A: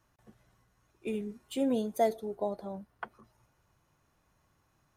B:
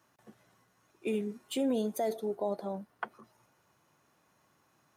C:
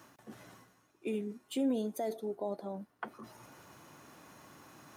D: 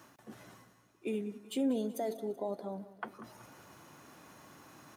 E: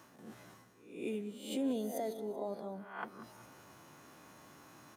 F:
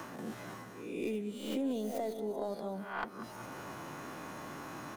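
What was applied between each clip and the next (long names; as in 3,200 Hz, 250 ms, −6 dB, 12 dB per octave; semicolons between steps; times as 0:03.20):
brickwall limiter −26.5 dBFS, peak gain reduction 11.5 dB; high-pass filter 180 Hz 12 dB per octave; level +4 dB
parametric band 280 Hz +5 dB 0.52 octaves; reversed playback; upward compression, threshold −35 dBFS; reversed playback; level −4.5 dB
repeating echo 190 ms, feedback 53%, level −17 dB
peak hold with a rise ahead of every peak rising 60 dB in 0.58 s; level −3.5 dB
stylus tracing distortion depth 0.16 ms; multiband upward and downward compressor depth 70%; level +3 dB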